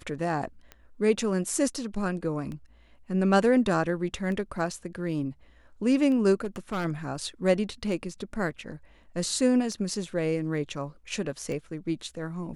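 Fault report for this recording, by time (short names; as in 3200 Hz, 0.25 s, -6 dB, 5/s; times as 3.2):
tick 33 1/3 rpm -26 dBFS
6.44–6.86 clipped -26 dBFS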